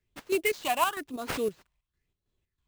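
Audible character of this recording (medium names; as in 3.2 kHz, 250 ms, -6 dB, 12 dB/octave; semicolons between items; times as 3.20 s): chopped level 3.1 Hz, depth 60%, duty 60%; phasing stages 6, 1 Hz, lowest notch 410–2100 Hz; aliases and images of a low sample rate 11 kHz, jitter 20%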